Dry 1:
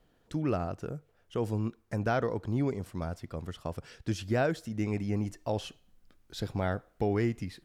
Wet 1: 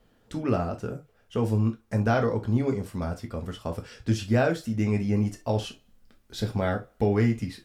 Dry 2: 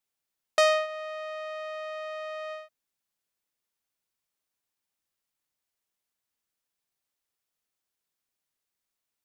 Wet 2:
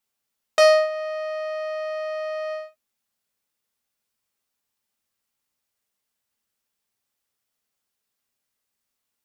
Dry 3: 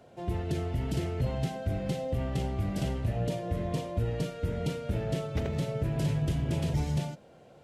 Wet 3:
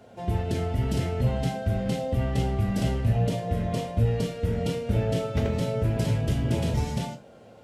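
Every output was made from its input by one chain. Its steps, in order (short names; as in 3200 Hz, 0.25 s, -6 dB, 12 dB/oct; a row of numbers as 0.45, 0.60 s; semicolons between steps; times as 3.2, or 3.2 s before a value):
non-linear reverb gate 90 ms falling, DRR 3 dB; gain +3 dB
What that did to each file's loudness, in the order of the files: +6.0, +7.0, +5.0 LU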